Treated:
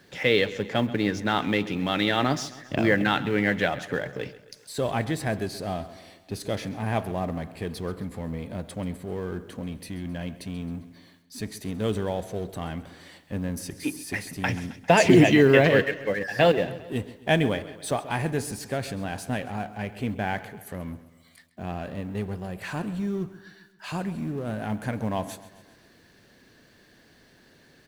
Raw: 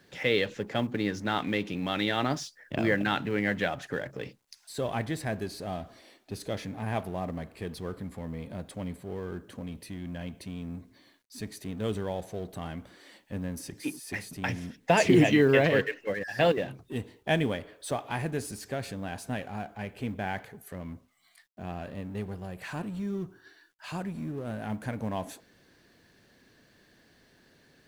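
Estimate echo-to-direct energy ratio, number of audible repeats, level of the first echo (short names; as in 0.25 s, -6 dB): -15.5 dB, 4, -17.0 dB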